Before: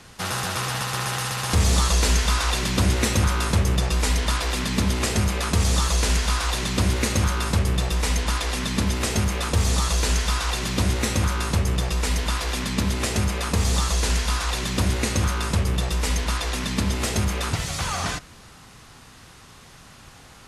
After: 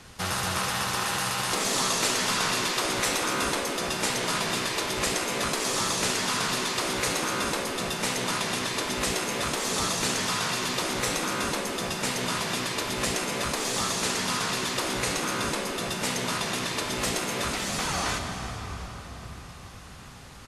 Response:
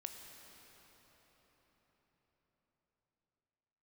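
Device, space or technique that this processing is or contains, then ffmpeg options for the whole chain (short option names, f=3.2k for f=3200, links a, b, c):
cave: -filter_complex "[0:a]aecho=1:1:351:0.126[a];[1:a]atrim=start_sample=2205[b];[a][b]afir=irnorm=-1:irlink=0,afftfilt=real='re*lt(hypot(re,im),0.178)':imag='im*lt(hypot(re,im),0.178)':win_size=1024:overlap=0.75,volume=3dB"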